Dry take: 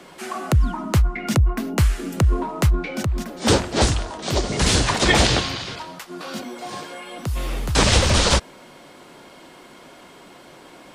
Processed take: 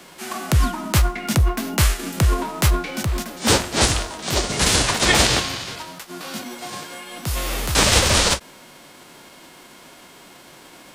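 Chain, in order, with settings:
spectral envelope flattened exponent 0.6
every ending faded ahead of time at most 350 dB per second

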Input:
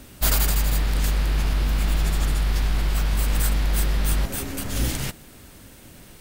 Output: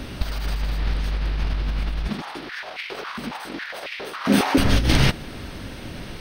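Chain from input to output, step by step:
compressor whose output falls as the input rises −25 dBFS, ratio −0.5
Savitzky-Golay smoothing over 15 samples
0:02.08–0:04.58: high-pass on a step sequencer 7.3 Hz 220–2,300 Hz
level +6 dB

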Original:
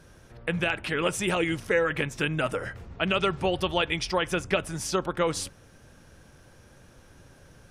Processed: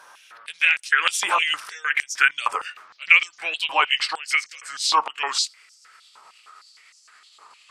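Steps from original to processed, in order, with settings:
pitch glide at a constant tempo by −4.5 semitones starting unshifted
high-pass on a step sequencer 6.5 Hz 970–5,800 Hz
level +6.5 dB

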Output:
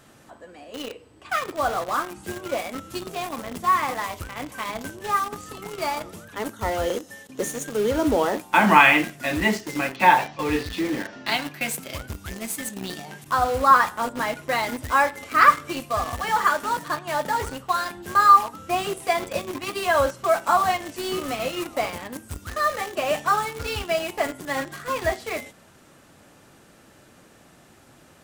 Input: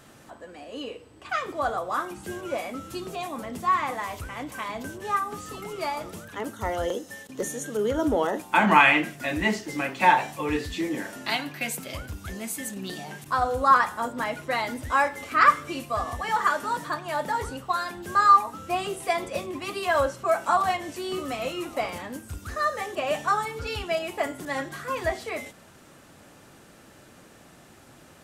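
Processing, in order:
0:09.94–0:11.42: Butterworth low-pass 5,600 Hz 36 dB per octave
in parallel at −5 dB: bit reduction 5 bits
on the sum: level −1 dB

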